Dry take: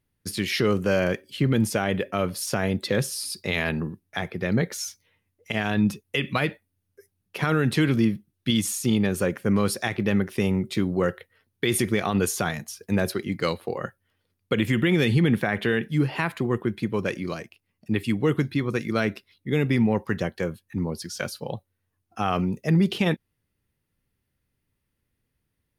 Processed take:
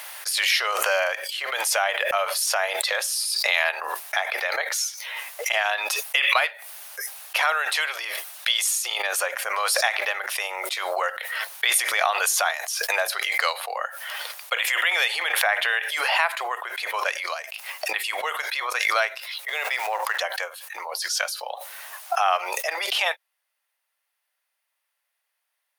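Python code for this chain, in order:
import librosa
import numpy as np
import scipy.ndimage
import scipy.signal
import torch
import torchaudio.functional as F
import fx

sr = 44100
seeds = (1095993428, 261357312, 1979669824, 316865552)

y = fx.law_mismatch(x, sr, coded='A', at=(19.48, 20.19))
y = scipy.signal.sosfilt(scipy.signal.butter(8, 620.0, 'highpass', fs=sr, output='sos'), y)
y = fx.pre_swell(y, sr, db_per_s=26.0)
y = F.gain(torch.from_numpy(y), 5.5).numpy()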